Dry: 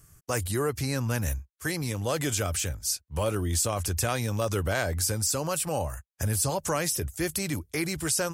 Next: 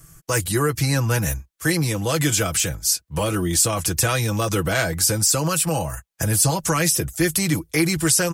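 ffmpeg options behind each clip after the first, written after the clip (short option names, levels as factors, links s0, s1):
-filter_complex "[0:a]aecho=1:1:6.1:0.63,acrossover=split=320|1100[s0][s1][s2];[s1]alimiter=level_in=1.41:limit=0.0631:level=0:latency=1:release=274,volume=0.708[s3];[s0][s3][s2]amix=inputs=3:normalize=0,volume=2.37"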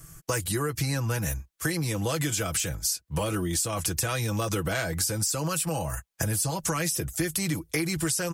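-af "acompressor=threshold=0.0562:ratio=6"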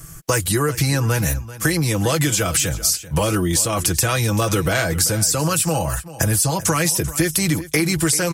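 -af "aecho=1:1:389:0.158,volume=2.82"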